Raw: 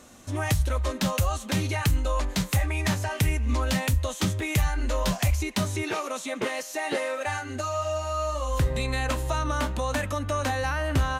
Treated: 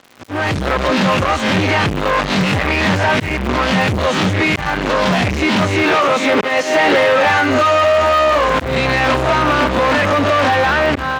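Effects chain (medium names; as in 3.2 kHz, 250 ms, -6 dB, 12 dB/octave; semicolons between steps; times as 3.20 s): reverse spectral sustain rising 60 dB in 0.35 s; bass shelf 340 Hz -4 dB; slow attack 265 ms; fuzz box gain 41 dB, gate -45 dBFS; band-pass 120–2900 Hz; crackle 100 per s -27 dBFS; level rider; trim -3.5 dB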